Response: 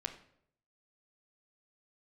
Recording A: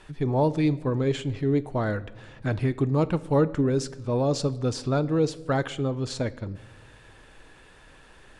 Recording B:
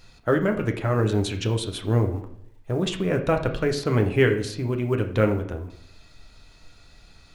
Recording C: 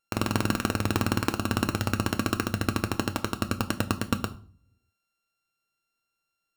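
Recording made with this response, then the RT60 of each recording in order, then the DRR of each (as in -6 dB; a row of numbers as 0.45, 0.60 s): B; not exponential, 0.70 s, 0.45 s; 14.0, 4.5, 8.0 dB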